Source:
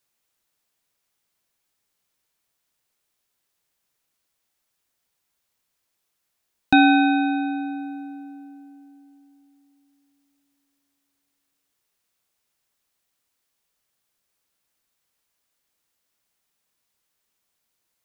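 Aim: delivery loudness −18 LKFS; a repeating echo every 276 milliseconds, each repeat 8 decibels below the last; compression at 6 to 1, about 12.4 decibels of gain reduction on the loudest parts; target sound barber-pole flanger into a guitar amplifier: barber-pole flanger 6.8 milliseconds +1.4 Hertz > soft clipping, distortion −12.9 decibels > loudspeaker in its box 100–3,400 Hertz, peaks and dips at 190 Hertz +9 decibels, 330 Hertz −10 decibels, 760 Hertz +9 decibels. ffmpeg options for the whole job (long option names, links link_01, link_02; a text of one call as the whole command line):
ffmpeg -i in.wav -filter_complex "[0:a]acompressor=threshold=-24dB:ratio=6,aecho=1:1:276|552|828|1104|1380:0.398|0.159|0.0637|0.0255|0.0102,asplit=2[link_01][link_02];[link_02]adelay=6.8,afreqshift=1.4[link_03];[link_01][link_03]amix=inputs=2:normalize=1,asoftclip=threshold=-27dB,highpass=100,equalizer=frequency=190:width_type=q:width=4:gain=9,equalizer=frequency=330:width_type=q:width=4:gain=-10,equalizer=frequency=760:width_type=q:width=4:gain=9,lowpass=frequency=3400:width=0.5412,lowpass=frequency=3400:width=1.3066,volume=13.5dB" out.wav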